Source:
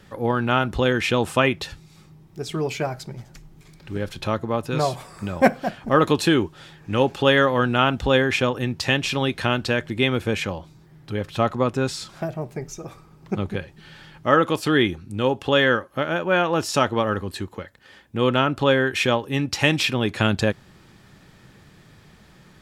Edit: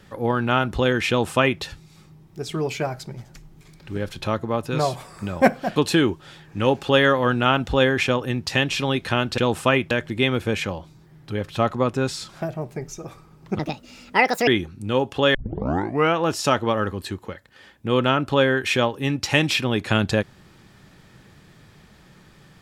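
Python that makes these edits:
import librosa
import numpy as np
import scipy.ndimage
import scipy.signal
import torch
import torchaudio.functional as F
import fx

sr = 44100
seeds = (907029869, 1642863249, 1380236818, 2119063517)

y = fx.edit(x, sr, fx.duplicate(start_s=1.09, length_s=0.53, to_s=9.71),
    fx.cut(start_s=5.76, length_s=0.33),
    fx.speed_span(start_s=13.39, length_s=1.38, speed=1.56),
    fx.tape_start(start_s=15.64, length_s=0.81), tone=tone)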